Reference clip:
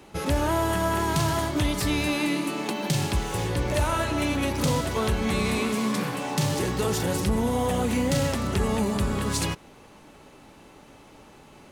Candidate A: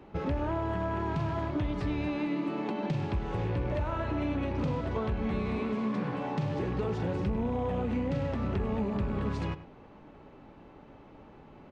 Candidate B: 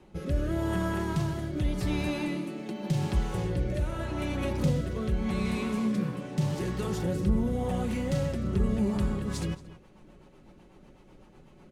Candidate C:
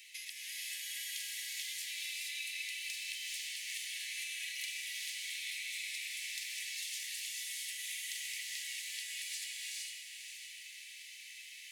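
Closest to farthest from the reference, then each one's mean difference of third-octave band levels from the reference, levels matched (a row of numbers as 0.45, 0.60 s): B, A, C; 6.0, 8.5, 27.0 dB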